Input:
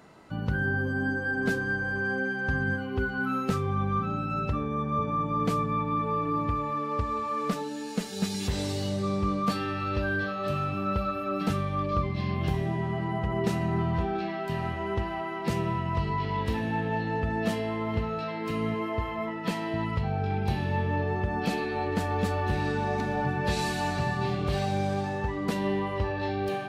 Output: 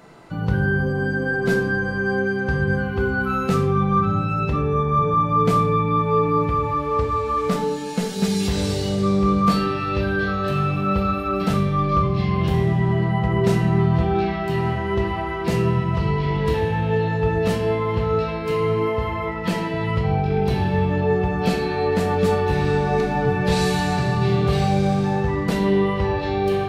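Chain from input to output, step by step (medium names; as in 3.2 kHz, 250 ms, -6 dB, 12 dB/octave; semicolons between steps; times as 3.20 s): simulated room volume 170 m³, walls mixed, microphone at 0.75 m; trim +5 dB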